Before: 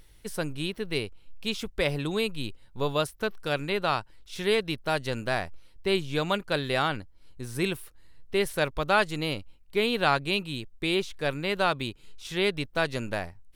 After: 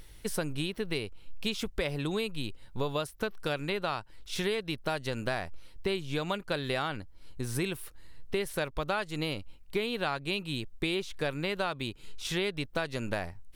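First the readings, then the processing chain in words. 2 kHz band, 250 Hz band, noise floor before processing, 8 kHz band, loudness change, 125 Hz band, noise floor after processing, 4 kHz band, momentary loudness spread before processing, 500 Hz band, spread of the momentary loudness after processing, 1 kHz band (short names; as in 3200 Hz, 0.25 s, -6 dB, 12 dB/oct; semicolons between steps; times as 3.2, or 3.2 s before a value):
-5.5 dB, -3.0 dB, -54 dBFS, -0.5 dB, -5.0 dB, -2.5 dB, -51 dBFS, -4.5 dB, 12 LU, -5.0 dB, 7 LU, -7.0 dB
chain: compressor 6:1, threshold -33 dBFS, peak gain reduction 15 dB; gain +4.5 dB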